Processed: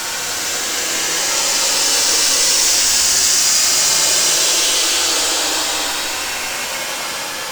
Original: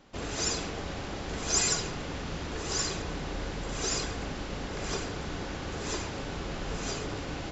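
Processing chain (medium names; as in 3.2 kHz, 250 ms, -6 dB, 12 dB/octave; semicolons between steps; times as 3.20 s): high-pass 510 Hz 12 dB/octave; tilt EQ +2 dB/octave; noise-vocoded speech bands 8; fuzz box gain 32 dB, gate -40 dBFS; Paulstretch 19×, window 0.10 s, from 3.75 s; on a send: reverberation RT60 0.35 s, pre-delay 3 ms, DRR 7 dB; on the sum: trim +1 dB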